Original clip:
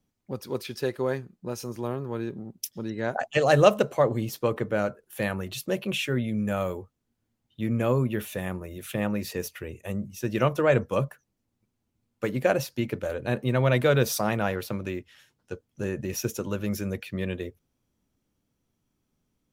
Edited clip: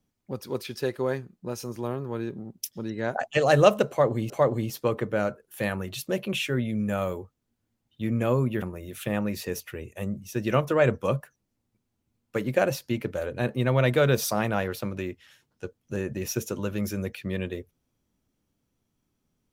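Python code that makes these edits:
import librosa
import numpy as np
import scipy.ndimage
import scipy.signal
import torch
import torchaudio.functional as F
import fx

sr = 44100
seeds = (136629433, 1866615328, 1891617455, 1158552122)

y = fx.edit(x, sr, fx.repeat(start_s=3.89, length_s=0.41, count=2),
    fx.cut(start_s=8.21, length_s=0.29), tone=tone)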